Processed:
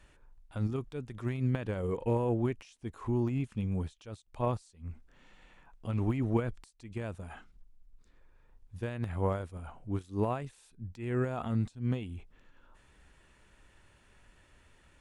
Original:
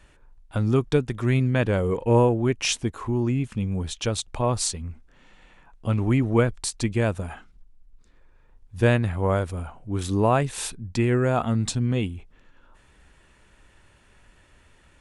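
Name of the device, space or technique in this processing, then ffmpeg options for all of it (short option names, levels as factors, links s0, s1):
de-esser from a sidechain: -filter_complex "[0:a]asplit=2[s0][s1];[s1]highpass=f=4800:w=0.5412,highpass=f=4800:w=1.3066,apad=whole_len=661589[s2];[s0][s2]sidechaincompress=threshold=0.00141:ratio=5:attack=1.2:release=78,volume=0.531"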